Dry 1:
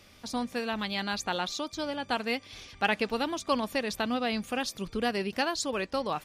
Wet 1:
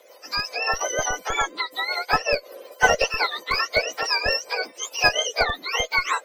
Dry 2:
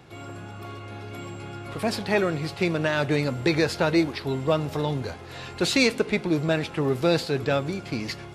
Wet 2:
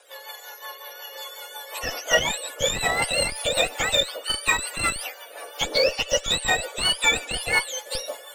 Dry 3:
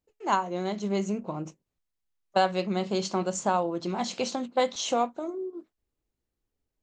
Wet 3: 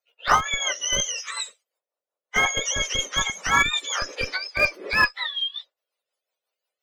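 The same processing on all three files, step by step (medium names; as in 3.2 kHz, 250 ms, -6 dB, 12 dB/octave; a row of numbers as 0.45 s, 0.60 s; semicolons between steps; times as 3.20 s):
spectrum inverted on a logarithmic axis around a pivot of 1.1 kHz; Chebyshev high-pass 530 Hz, order 4; band-stop 1.6 kHz, Q 23; in parallel at -6 dB: Schmitt trigger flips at -25 dBFS; on the sum: rotary cabinet horn 5.5 Hz; normalise loudness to -23 LUFS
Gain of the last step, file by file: +15.0 dB, +7.5 dB, +12.5 dB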